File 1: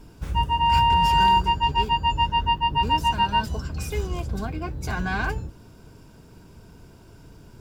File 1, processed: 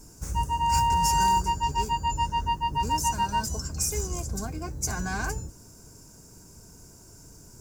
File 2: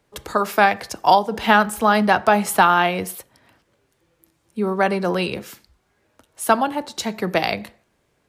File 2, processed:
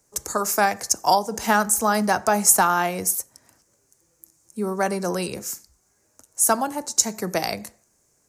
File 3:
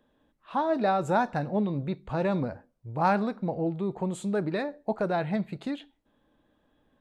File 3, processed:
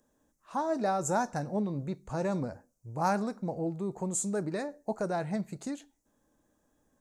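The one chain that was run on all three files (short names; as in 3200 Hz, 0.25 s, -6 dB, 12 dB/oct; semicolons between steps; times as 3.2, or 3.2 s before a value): resonant high shelf 4700 Hz +12 dB, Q 3; gain -4 dB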